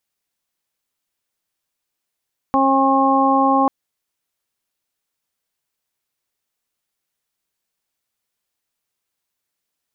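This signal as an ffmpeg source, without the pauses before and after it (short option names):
-f lavfi -i "aevalsrc='0.133*sin(2*PI*270*t)+0.0841*sin(2*PI*540*t)+0.15*sin(2*PI*810*t)+0.133*sin(2*PI*1080*t)':d=1.14:s=44100"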